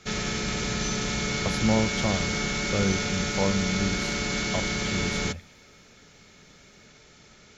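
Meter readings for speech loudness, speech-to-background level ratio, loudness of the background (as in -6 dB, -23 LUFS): -30.5 LUFS, -3.0 dB, -27.5 LUFS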